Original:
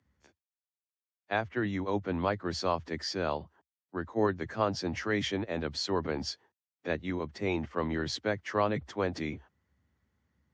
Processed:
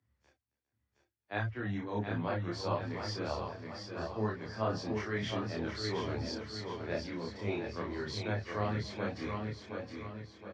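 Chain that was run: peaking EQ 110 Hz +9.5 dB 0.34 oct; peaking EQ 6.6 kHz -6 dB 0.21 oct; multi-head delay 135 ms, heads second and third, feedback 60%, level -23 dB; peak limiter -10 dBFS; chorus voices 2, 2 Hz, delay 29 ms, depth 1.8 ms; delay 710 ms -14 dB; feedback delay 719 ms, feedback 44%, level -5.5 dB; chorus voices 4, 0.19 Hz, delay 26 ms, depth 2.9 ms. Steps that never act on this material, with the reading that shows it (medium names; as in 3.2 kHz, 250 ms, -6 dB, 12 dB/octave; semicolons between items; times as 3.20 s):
peak limiter -10 dBFS: peak at its input -12.5 dBFS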